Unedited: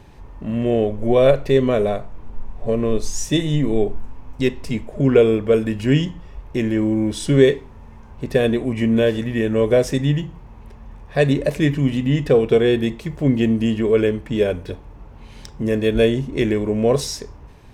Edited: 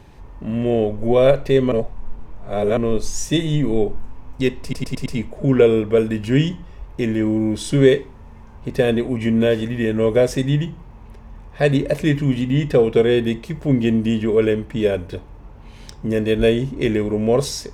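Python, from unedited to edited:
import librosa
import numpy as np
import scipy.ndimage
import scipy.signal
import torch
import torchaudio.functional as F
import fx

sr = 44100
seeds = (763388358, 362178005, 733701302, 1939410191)

y = fx.edit(x, sr, fx.reverse_span(start_s=1.72, length_s=1.05),
    fx.stutter(start_s=4.62, slice_s=0.11, count=5), tone=tone)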